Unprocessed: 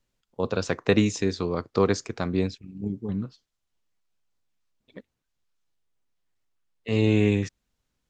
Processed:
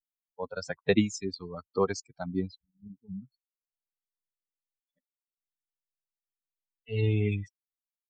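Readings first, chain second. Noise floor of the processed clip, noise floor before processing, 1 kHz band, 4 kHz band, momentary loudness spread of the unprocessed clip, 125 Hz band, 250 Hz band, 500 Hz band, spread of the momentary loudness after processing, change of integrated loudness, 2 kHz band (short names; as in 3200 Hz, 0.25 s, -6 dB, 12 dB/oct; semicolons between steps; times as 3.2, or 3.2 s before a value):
under -85 dBFS, -81 dBFS, -5.5 dB, -6.0 dB, 12 LU, -4.5 dB, -7.5 dB, -6.0 dB, 17 LU, -5.0 dB, -6.0 dB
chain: per-bin expansion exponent 3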